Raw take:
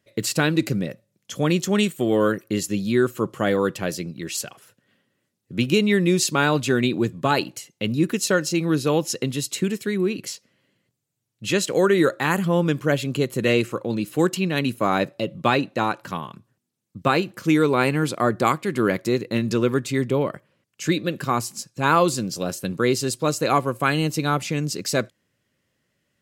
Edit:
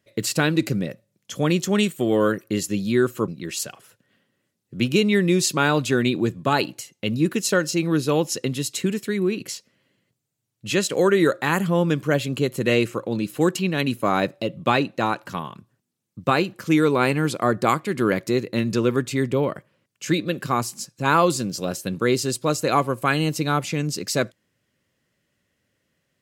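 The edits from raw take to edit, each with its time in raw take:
0:03.28–0:04.06: remove

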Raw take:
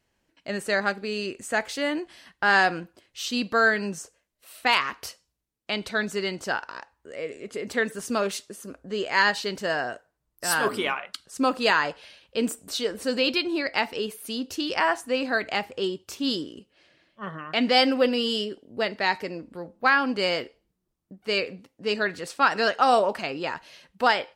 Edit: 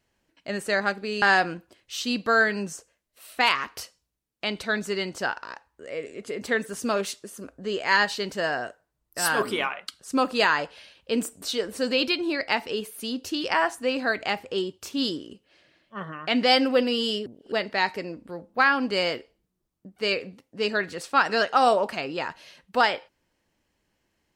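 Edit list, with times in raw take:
0:01.22–0:02.48: remove
0:18.52–0:18.78: reverse

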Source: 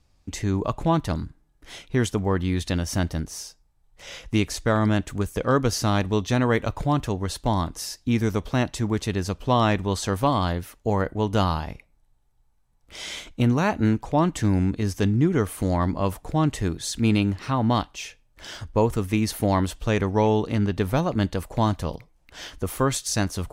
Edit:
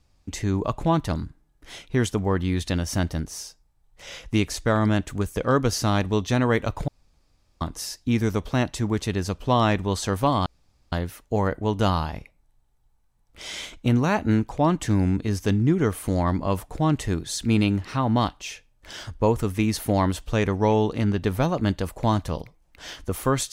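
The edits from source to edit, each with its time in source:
0:06.88–0:07.61: fill with room tone
0:10.46: splice in room tone 0.46 s

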